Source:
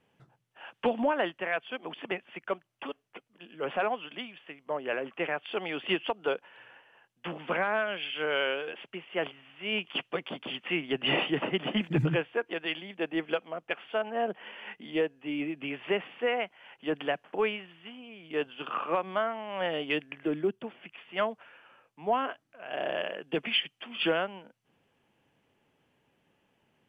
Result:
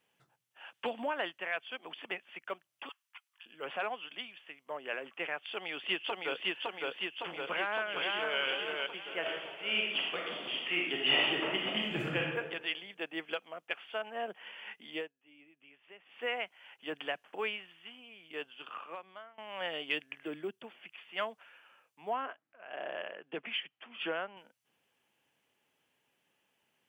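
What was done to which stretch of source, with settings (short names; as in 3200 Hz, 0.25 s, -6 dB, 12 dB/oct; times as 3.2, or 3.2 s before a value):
2.89–3.46 steep high-pass 890 Hz 48 dB/oct
5.48–6.5 echo throw 0.56 s, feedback 70%, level -1 dB
7.49–8.4 echo throw 0.46 s, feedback 40%, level -2.5 dB
9.19–12.37 reverb throw, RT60 1 s, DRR -1.5 dB
14.95–16.22 dip -19 dB, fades 0.17 s
18.02–19.38 fade out linear, to -21.5 dB
22.13–24.37 BPF 120–2000 Hz
whole clip: tilt +3 dB/oct; gain -6 dB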